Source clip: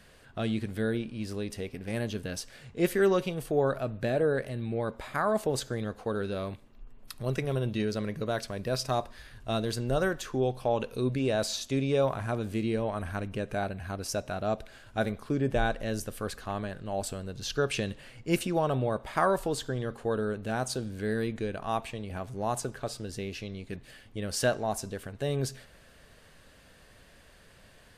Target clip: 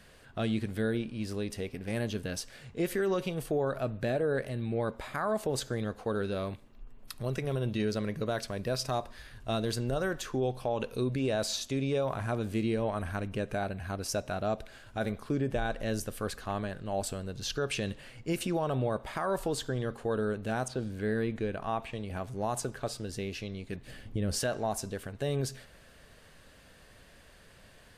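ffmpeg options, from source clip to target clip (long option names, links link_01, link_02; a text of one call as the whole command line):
ffmpeg -i in.wav -filter_complex "[0:a]asettb=1/sr,asplit=3[link_01][link_02][link_03];[link_01]atrim=end=20.684[link_04];[link_02]atrim=start=20.68:end=21.93,asetpts=PTS-STARTPTS,afade=type=in:duration=0.004:curve=qsin,afade=type=out:start_time=1.246:duration=0.004:curve=qsin,acrossover=split=3300[link_05][link_06];[link_06]acompressor=threshold=-57dB:ratio=4:attack=1:release=60[link_07];[link_05][link_07]amix=inputs=2:normalize=0[link_08];[link_03]atrim=start=21.926[link_09];[link_04][link_08]acrossfade=duration=0.004:curve1=hsin:curve2=qsin[link_10];[link_10][link_09]acrossfade=duration=0.004:curve1=qsin:curve2=hsin,asettb=1/sr,asplit=3[link_11][link_12][link_13];[link_11]atrim=end=23.864[link_14];[link_12]atrim=start=23.86:end=24.39,asetpts=PTS-STARTPTS,afade=type=in:duration=0.004:curve=qsin,afade=type=out:start_time=0.526:duration=0.004:curve=qsin,lowshelf=frequency=450:gain=11[link_15];[link_13]atrim=start=24.386[link_16];[link_14][link_15]acrossfade=duration=0.004:curve1=hsin:curve2=qsin[link_17];[link_17][link_16]acrossfade=duration=0.004:curve1=qsin:curve2=hsin,alimiter=limit=-21.5dB:level=0:latency=1:release=83" out.wav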